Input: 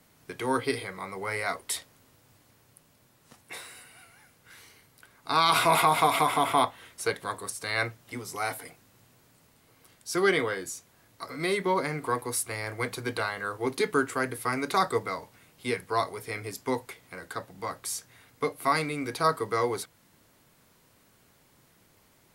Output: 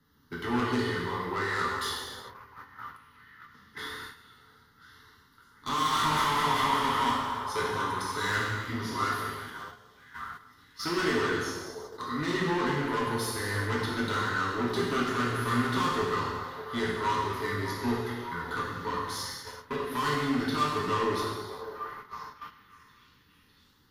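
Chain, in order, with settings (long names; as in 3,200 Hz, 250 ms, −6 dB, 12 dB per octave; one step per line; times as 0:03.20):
high-shelf EQ 3,900 Hz −8 dB
phaser with its sweep stopped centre 2,600 Hz, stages 6
in parallel at +0.5 dB: brickwall limiter −22 dBFS, peak gain reduction 8.5 dB
on the sum: soft clipping −28 dBFS, distortion −7 dB
change of speed 0.935×
on a send: echo through a band-pass that steps 601 ms, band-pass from 640 Hz, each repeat 0.7 octaves, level −7 dB
on the sum: reverb whose tail is shaped and stops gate 440 ms falling, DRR −5 dB
noise gate −40 dBFS, range −9 dB
level −2 dB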